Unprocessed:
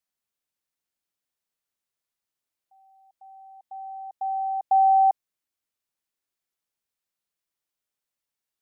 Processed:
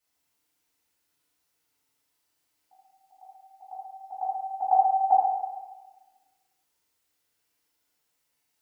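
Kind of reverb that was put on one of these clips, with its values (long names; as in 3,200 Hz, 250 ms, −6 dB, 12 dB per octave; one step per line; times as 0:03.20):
feedback delay network reverb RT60 1.3 s, low-frequency decay 0.8×, high-frequency decay 0.85×, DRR −9 dB
level +2 dB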